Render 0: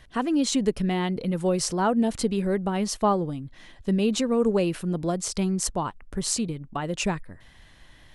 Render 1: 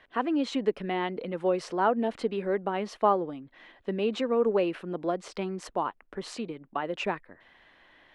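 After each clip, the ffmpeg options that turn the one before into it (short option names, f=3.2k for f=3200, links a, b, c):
-filter_complex "[0:a]acrossover=split=270 3300:gain=0.0891 1 0.0631[a][b][c];[a][b][c]amix=inputs=3:normalize=0"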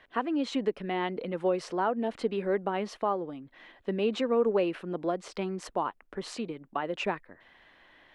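-af "alimiter=limit=-17dB:level=0:latency=1:release=450"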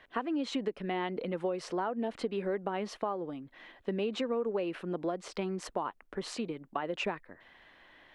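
-af "acompressor=threshold=-29dB:ratio=6"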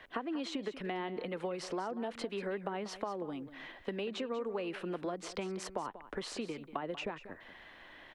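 -filter_complex "[0:a]acrossover=split=270|870[a][b][c];[a]acompressor=threshold=-51dB:ratio=4[d];[b]acompressor=threshold=-44dB:ratio=4[e];[c]acompressor=threshold=-47dB:ratio=4[f];[d][e][f]amix=inputs=3:normalize=0,aecho=1:1:189:0.2,volume=4dB"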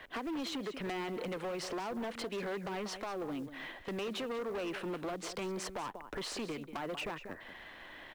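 -af "acrusher=bits=6:mode=log:mix=0:aa=0.000001,asoftclip=type=hard:threshold=-38.5dB,volume=3.5dB"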